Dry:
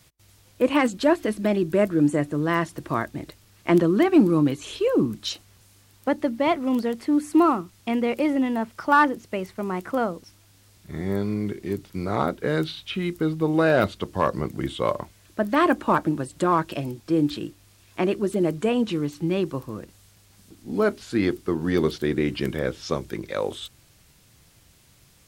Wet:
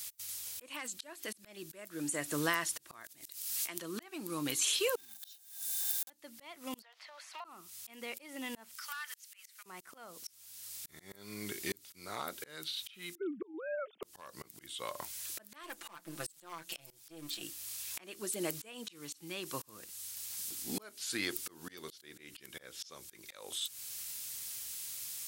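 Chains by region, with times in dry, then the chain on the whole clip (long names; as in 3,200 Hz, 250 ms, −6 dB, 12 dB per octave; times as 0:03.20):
0:03.04–0:03.82: high-shelf EQ 2,700 Hz +8.5 dB + background raised ahead of every attack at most 33 dB per second
0:04.96–0:06.10: one scale factor per block 3 bits + high-shelf EQ 4,900 Hz +8.5 dB + hollow resonant body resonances 800/1,600/3,600 Hz, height 17 dB, ringing for 50 ms
0:06.82–0:07.45: Chebyshev high-pass filter 590 Hz, order 5 + downward compressor, threshold −42 dBFS + high-frequency loss of the air 250 metres
0:08.76–0:09.66: high-pass filter 1,400 Hz 24 dB per octave + downward compressor 20 to 1, threshold −37 dBFS
0:13.15–0:14.03: three sine waves on the formant tracks + resonant band-pass 320 Hz, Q 0.99
0:15.63–0:17.42: gain on one half-wave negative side −7 dB + mains-hum notches 60/120/180 Hz + comb filter 5.9 ms, depth 76%
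whole clip: first-order pre-emphasis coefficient 0.97; downward compressor 16 to 1, threshold −44 dBFS; volume swells 660 ms; level +16.5 dB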